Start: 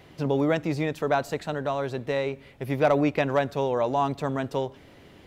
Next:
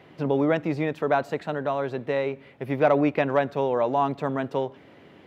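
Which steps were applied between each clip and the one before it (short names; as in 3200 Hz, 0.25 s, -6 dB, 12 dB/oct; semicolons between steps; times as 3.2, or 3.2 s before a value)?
HPF 140 Hz 12 dB/oct; tone controls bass 0 dB, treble -13 dB; gain +1.5 dB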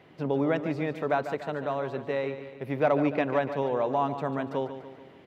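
feedback echo 0.145 s, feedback 52%, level -11 dB; gain -4 dB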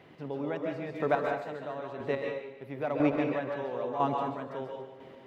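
chopper 1 Hz, depth 65%, duty 15%; plate-style reverb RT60 0.51 s, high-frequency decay 0.9×, pre-delay 0.12 s, DRR 1.5 dB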